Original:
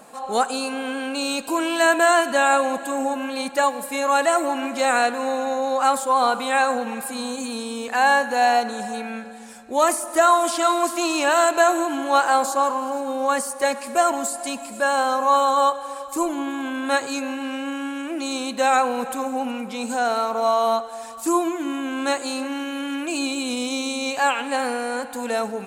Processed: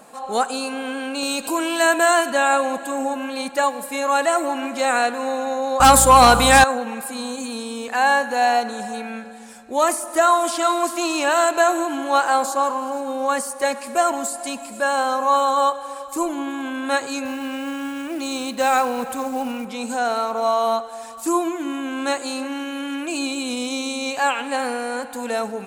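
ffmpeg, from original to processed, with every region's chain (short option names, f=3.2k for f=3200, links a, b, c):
-filter_complex "[0:a]asettb=1/sr,asplit=3[a][b][c];[a]atrim=end=1.234[d];[b]atrim=start=1.23:end=2.3,asetpts=PTS-STARTPTS,afade=t=in:d=0.004:c=qsin,afade=t=out:st=1.066:d=0.004:c=qsin,highshelf=f=6.1k:g=5,acompressor=mode=upward:threshold=-21dB:ratio=2.5:attack=3.2:release=140:knee=2.83:detection=peak[e];[c]atrim=start=2.296[f];[d][e]acrossfade=d=0.004:c1=hsin:c2=qsin[g];[g][f]acrossfade=d=0.004:c1=qsin:c2=hsin,asettb=1/sr,asplit=3[h][i][j];[h]atrim=end=5.804[k];[i]atrim=start=5.8:end=6.64,asetpts=PTS-STARTPTS,afade=t=in:d=0.004:c=qsin,afade=t=out:st=0.836:d=0.004:c=qsin,aemphasis=mode=production:type=cd,aeval=exprs='0.562*sin(PI/2*2*val(0)/0.562)':c=same,aeval=exprs='val(0)+0.0708*(sin(2*PI*60*n/s)+sin(2*PI*2*60*n/s)/2+sin(2*PI*3*60*n/s)/3+sin(2*PI*4*60*n/s)/4+sin(2*PI*5*60*n/s)/5)':c=same[l];[j]atrim=start=6.636[m];[k][l]acrossfade=d=0.004:c1=hsin:c2=qsin[n];[n][m]acrossfade=d=0.004:c1=qsin:c2=hsin,asettb=1/sr,asplit=3[o][p][q];[o]atrim=end=17.254[r];[p]atrim=start=17.25:end=19.65,asetpts=PTS-STARTPTS,afade=t=in:d=0.004:c=qsin,afade=t=out:st=2.396:d=0.004:c=qsin,equalizer=f=89:t=o:w=0.9:g=11,acrusher=bits=5:mode=log:mix=0:aa=0.000001[s];[q]atrim=start=19.646[t];[r][s]acrossfade=d=0.004:c1=hsin:c2=qsin[u];[u][t]acrossfade=d=0.004:c1=qsin:c2=hsin"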